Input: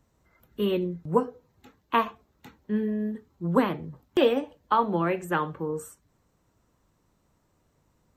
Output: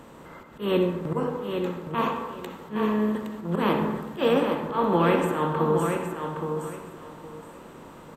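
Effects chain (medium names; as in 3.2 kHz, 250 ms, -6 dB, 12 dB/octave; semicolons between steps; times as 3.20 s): spectral levelling over time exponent 0.6; 2.03–4.28 s: treble shelf 2.7 kHz +3 dB; slow attack 138 ms; feedback delay 816 ms, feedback 22%, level -6 dB; reverberation RT60 1.2 s, pre-delay 53 ms, DRR 5.5 dB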